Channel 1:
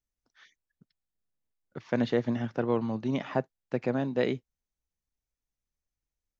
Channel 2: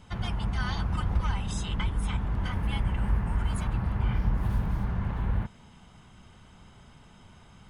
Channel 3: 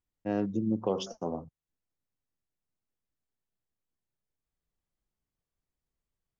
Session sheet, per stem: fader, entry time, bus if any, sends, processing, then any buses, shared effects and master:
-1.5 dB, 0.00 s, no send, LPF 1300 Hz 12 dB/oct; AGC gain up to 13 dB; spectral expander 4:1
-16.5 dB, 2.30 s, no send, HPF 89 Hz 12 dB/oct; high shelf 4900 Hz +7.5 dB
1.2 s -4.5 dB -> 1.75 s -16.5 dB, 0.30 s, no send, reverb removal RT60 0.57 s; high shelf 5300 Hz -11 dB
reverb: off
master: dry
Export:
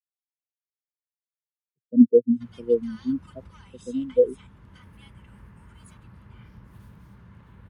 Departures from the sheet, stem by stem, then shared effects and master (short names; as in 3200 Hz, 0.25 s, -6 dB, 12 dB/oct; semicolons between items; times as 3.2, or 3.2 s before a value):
stem 3: muted; master: extra bell 740 Hz -10.5 dB 0.35 oct